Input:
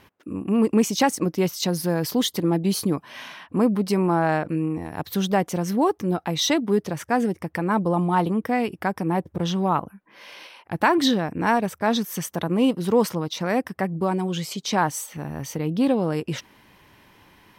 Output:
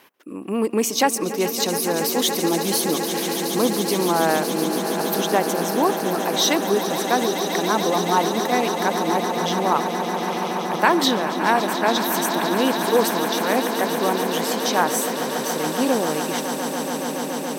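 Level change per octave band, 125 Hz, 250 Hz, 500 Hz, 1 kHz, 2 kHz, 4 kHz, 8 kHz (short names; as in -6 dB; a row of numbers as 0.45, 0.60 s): -5.5, -1.0, +4.0, +5.0, +5.0, +6.0, +8.0 dB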